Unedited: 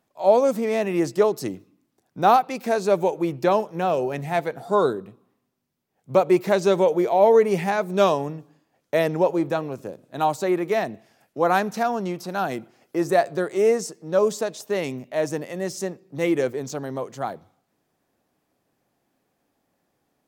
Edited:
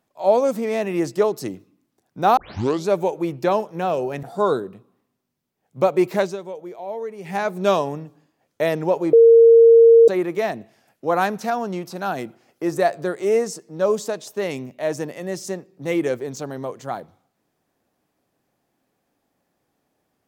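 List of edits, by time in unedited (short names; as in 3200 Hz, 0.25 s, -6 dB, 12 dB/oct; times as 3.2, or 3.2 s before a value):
2.37 tape start 0.51 s
4.23–4.56 cut
6.54–7.72 dip -14.5 dB, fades 0.16 s
9.46–10.41 bleep 460 Hz -6.5 dBFS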